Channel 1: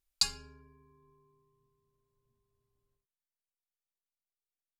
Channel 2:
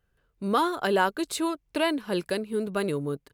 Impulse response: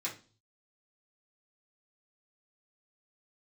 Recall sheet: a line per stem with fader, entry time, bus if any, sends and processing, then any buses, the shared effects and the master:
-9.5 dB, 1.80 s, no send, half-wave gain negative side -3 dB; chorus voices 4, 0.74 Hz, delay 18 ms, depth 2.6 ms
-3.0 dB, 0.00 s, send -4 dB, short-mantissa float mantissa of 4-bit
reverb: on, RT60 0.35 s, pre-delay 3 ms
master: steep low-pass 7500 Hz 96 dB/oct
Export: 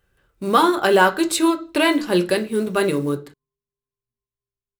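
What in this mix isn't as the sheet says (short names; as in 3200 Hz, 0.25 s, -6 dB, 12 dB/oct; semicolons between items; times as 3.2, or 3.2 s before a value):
stem 2 -3.0 dB -> +6.0 dB; master: missing steep low-pass 7500 Hz 96 dB/oct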